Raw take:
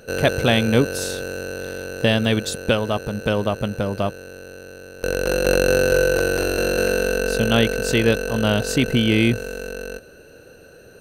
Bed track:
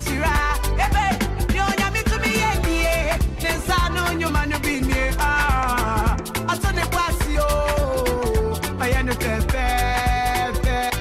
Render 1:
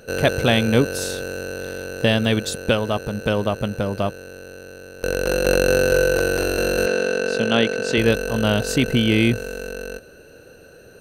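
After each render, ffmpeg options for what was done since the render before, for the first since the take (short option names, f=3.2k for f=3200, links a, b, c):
-filter_complex "[0:a]asettb=1/sr,asplit=3[a][b][c];[a]atrim=end=6.864[d];[b]atrim=start=6.86:end=7.98,asetpts=PTS-STARTPTS,afade=t=in:d=0.004:c=qsin,afade=t=out:st=1.116:d=0.004:c=qsin,highpass=170,lowpass=6k[e];[c]atrim=start=7.976[f];[d][e]acrossfade=d=0.004:c1=hsin:c2=qsin[g];[g][f]acrossfade=d=0.004:c1=qsin:c2=hsin"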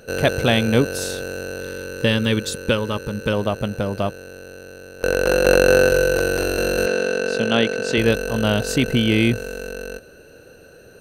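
-filter_complex "[0:a]asettb=1/sr,asplit=3[a][b][c];[a]atrim=end=1.614[d];[b]atrim=start=1.61:end=3.33,asetpts=PTS-STARTPTS,afade=t=in:d=0.004:c=qsin,afade=t=out:st=1.716:d=0.004:c=qsin,asuperstop=centerf=700:order=4:qfactor=3.2[e];[c]atrim=start=3.326[f];[d][e]acrossfade=d=0.004:c1=hsin:c2=qsin[g];[g][f]acrossfade=d=0.004:c1=qsin:c2=hsin,asettb=1/sr,asplit=3[h][i][j];[h]atrim=end=5.004[k];[i]atrim=start=5:end=5.89,asetpts=PTS-STARTPTS,afade=t=in:d=0.004:c=qsin,afade=t=out:st=0.886:d=0.004:c=qsin,equalizer=f=990:t=o:w=3:g=5[l];[j]atrim=start=5.886[m];[k][l]acrossfade=d=0.004:c1=hsin:c2=qsin[n];[n][m]acrossfade=d=0.004:c1=qsin:c2=hsin"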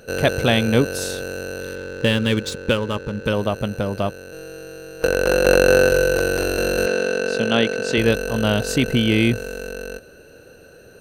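-filter_complex "[0:a]asettb=1/sr,asplit=3[a][b][c];[a]atrim=end=1.754[d];[b]atrim=start=1.75:end=3.25,asetpts=PTS-STARTPTS,afade=t=in:d=0.004:c=qsin,afade=t=out:st=1.496:d=0.004:c=qsin,adynamicsmooth=sensitivity=6.5:basefreq=2.2k[e];[c]atrim=start=3.246[f];[d][e]acrossfade=d=0.004:c1=hsin:c2=qsin[g];[g][f]acrossfade=d=0.004:c1=qsin:c2=hsin,asettb=1/sr,asplit=3[h][i][j];[h]atrim=end=4.324[k];[i]atrim=start=4.32:end=5.07,asetpts=PTS-STARTPTS,afade=t=in:d=0.004:c=qsin,afade=t=out:st=0.746:d=0.004:c=qsin,aecho=1:1:6.3:0.98,atrim=end_sample=33075[l];[j]atrim=start=5.066[m];[k][l]acrossfade=d=0.004:c1=hsin:c2=qsin[n];[n][m]acrossfade=d=0.004:c1=qsin:c2=hsin"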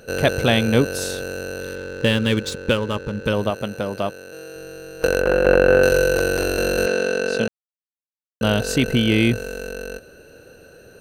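-filter_complex "[0:a]asettb=1/sr,asplit=3[a][b][c];[a]atrim=end=3.504[d];[b]atrim=start=3.5:end=4.56,asetpts=PTS-STARTPTS,afade=t=in:d=0.004:c=qsin,afade=t=out:st=1.056:d=0.004:c=qsin,highpass=f=220:p=1[e];[c]atrim=start=4.556[f];[d][e]acrossfade=d=0.004:c1=hsin:c2=qsin[g];[g][f]acrossfade=d=0.004:c1=qsin:c2=hsin,asettb=1/sr,asplit=3[h][i][j];[h]atrim=end=5.214[k];[i]atrim=start=5.21:end=5.83,asetpts=PTS-STARTPTS,afade=t=in:d=0.004:c=qsin,afade=t=out:st=0.616:d=0.004:c=qsin,acrossover=split=2800[l][m];[m]acompressor=threshold=-43dB:ratio=4:attack=1:release=60[n];[l][n]amix=inputs=2:normalize=0[o];[j]atrim=start=5.826[p];[k][o]acrossfade=d=0.004:c1=hsin:c2=qsin[q];[q][p]acrossfade=d=0.004:c1=qsin:c2=hsin,asplit=3[r][s][t];[r]atrim=end=7.48,asetpts=PTS-STARTPTS,afade=t=out:st=7.476:d=0.004:c=hsin[u];[s]atrim=start=7.48:end=8.41,asetpts=PTS-STARTPTS,volume=0[v];[t]atrim=start=8.41,asetpts=PTS-STARTPTS,afade=t=in:d=0.004:c=hsin[w];[u][v][w]concat=n=3:v=0:a=1"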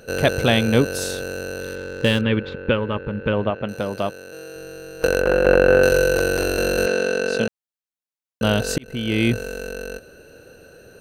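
-filter_complex "[0:a]asettb=1/sr,asplit=3[a][b][c];[a]atrim=end=2.214[d];[b]atrim=start=2.21:end=3.69,asetpts=PTS-STARTPTS,afade=t=in:d=0.004:c=qsin,afade=t=out:st=1.476:d=0.004:c=qsin,lowpass=f=2.9k:w=0.5412,lowpass=f=2.9k:w=1.3066[e];[c]atrim=start=3.686[f];[d][e]acrossfade=d=0.004:c1=hsin:c2=qsin[g];[g][f]acrossfade=d=0.004:c1=qsin:c2=hsin,asplit=2[h][i];[h]atrim=end=8.78,asetpts=PTS-STARTPTS,afade=t=out:st=8.776:d=0.004:c=hsin[j];[i]atrim=start=8.78,asetpts=PTS-STARTPTS,afade=t=in:d=0.56[k];[j][k]concat=n=2:v=0:a=1"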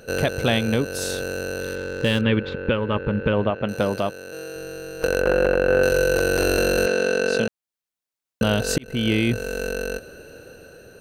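-af "dynaudnorm=f=920:g=3:m=7dB,alimiter=limit=-9.5dB:level=0:latency=1:release=347"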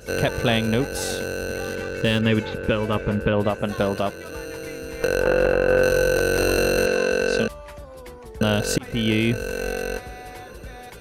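-filter_complex "[1:a]volume=-19dB[a];[0:a][a]amix=inputs=2:normalize=0"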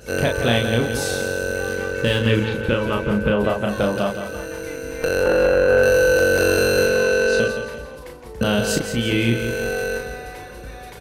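-filter_complex "[0:a]asplit=2[a][b];[b]adelay=34,volume=-4dB[c];[a][c]amix=inputs=2:normalize=0,aecho=1:1:171|342|513|684|855:0.355|0.153|0.0656|0.0282|0.0121"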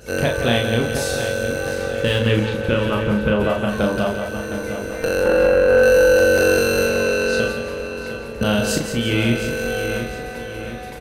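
-filter_complex "[0:a]asplit=2[a][b];[b]adelay=47,volume=-10.5dB[c];[a][c]amix=inputs=2:normalize=0,asplit=2[d][e];[e]adelay=712,lowpass=f=4.7k:p=1,volume=-9.5dB,asplit=2[f][g];[g]adelay=712,lowpass=f=4.7k:p=1,volume=0.53,asplit=2[h][i];[i]adelay=712,lowpass=f=4.7k:p=1,volume=0.53,asplit=2[j][k];[k]adelay=712,lowpass=f=4.7k:p=1,volume=0.53,asplit=2[l][m];[m]adelay=712,lowpass=f=4.7k:p=1,volume=0.53,asplit=2[n][o];[o]adelay=712,lowpass=f=4.7k:p=1,volume=0.53[p];[d][f][h][j][l][n][p]amix=inputs=7:normalize=0"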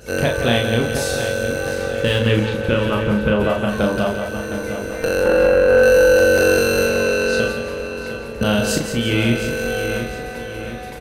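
-af "volume=1dB"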